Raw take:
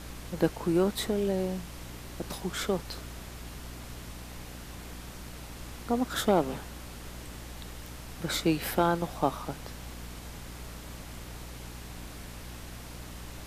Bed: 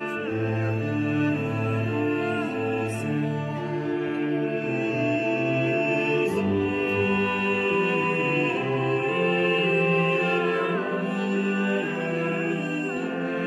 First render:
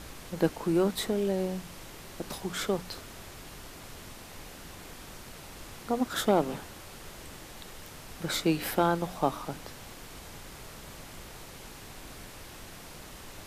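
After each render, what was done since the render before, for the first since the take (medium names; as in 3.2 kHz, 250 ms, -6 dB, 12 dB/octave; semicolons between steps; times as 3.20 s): de-hum 60 Hz, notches 5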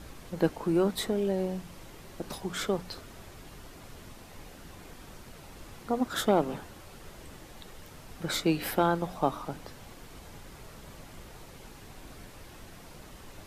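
noise reduction 6 dB, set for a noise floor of -47 dBFS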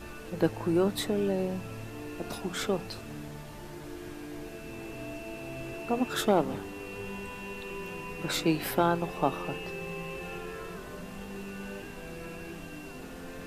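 add bed -16.5 dB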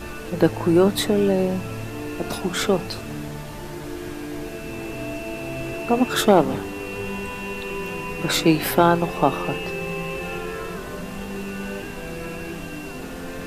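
trim +9.5 dB; peak limiter -3 dBFS, peak gain reduction 1 dB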